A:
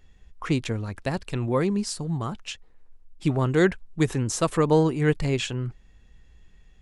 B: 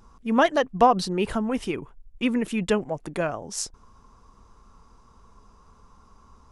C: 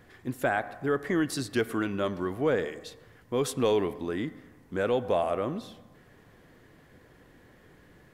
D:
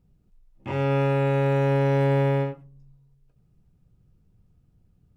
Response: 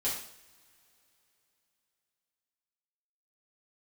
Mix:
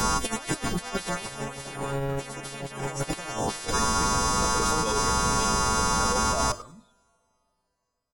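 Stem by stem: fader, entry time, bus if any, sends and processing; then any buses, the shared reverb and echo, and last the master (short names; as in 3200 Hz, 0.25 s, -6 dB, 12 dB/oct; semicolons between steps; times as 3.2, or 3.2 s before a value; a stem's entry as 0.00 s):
-17.0 dB, 0.00 s, no send, no echo send, dry
-2.5 dB, 0.00 s, send -21 dB, echo send -21.5 dB, frequency quantiser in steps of 2 st; notch 5100 Hz, Q 23; spectral compressor 10:1
+2.5 dB, 1.20 s, send -19.5 dB, no echo send, per-bin expansion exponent 3; low shelf 480 Hz -7.5 dB; level quantiser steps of 11 dB
-2.0 dB, 0.55 s, no send, no echo send, one-sided clip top -25 dBFS, bottom -15.5 dBFS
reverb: on, pre-delay 3 ms
echo: feedback echo 0.1 s, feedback 30%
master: notches 50/100/150/200/250/300/350 Hz; negative-ratio compressor -27 dBFS, ratio -0.5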